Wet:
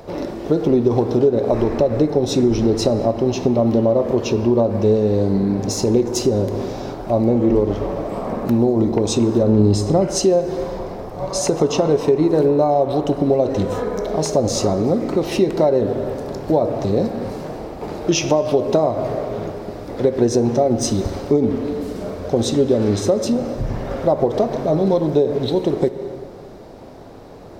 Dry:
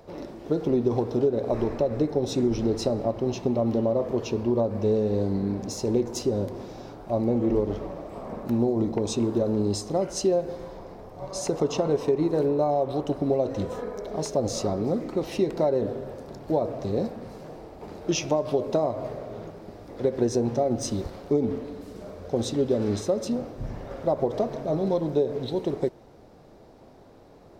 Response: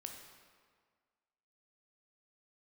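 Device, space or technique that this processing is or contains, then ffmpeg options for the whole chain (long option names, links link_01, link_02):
ducked reverb: -filter_complex "[0:a]asplit=3[link_01][link_02][link_03];[1:a]atrim=start_sample=2205[link_04];[link_02][link_04]afir=irnorm=-1:irlink=0[link_05];[link_03]apad=whole_len=1217093[link_06];[link_05][link_06]sidechaincompress=threshold=-31dB:ratio=8:attack=16:release=215,volume=5.5dB[link_07];[link_01][link_07]amix=inputs=2:normalize=0,asettb=1/sr,asplit=3[link_08][link_09][link_10];[link_08]atrim=end=9.434[link_11];[link_09]atrim=start=9.43:end=10.08,asetpts=PTS-STARTPTS,afade=type=in:duration=0.004:curve=qsin,afade=type=out:start_time=0.646:duration=0.004:curve=qsin,bass=frequency=250:gain=6,treble=frequency=4000:gain=-5[link_12];[link_10]atrim=start=10.076[link_13];[link_11][link_12]acrossfade=duration=0.004:curve1=hsin:curve2=qsin[link_14];[link_14][link_13]acrossfade=duration=0.004:curve1=qsin:curve2=hsin,volume=5.5dB"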